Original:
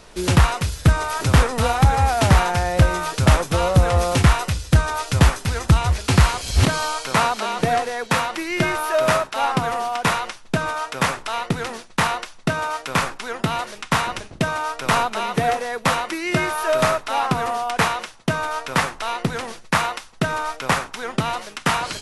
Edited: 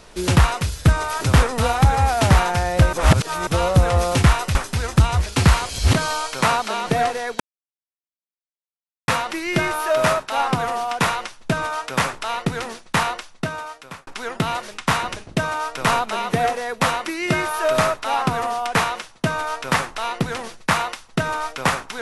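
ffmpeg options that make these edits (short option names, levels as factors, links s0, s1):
-filter_complex "[0:a]asplit=6[s0][s1][s2][s3][s4][s5];[s0]atrim=end=2.932[s6];[s1]atrim=start=2.928:end=3.472,asetpts=PTS-STARTPTS,areverse[s7];[s2]atrim=start=3.468:end=4.552[s8];[s3]atrim=start=5.268:end=8.12,asetpts=PTS-STARTPTS,afade=t=out:st=2.848:d=0.004:c=hsin,apad=pad_dur=1.68[s9];[s4]atrim=start=8.12:end=13.11,asetpts=PTS-STARTPTS,afade=t=in:d=0.004:c=hsin,afade=t=out:st=4.01:d=0.98[s10];[s5]atrim=start=13.11,asetpts=PTS-STARTPTS,afade=t=in:d=0.004:c=hsin[s11];[s6][s7]acrossfade=d=0.004:c1=hsin:c2=hsin[s12];[s12][s8]acrossfade=d=0.004:c1=hsin:c2=hsin[s13];[s9][s10][s11]concat=n=3:v=0:a=1[s14];[s13][s14]acrossfade=d=0.004:c1=hsin:c2=hsin"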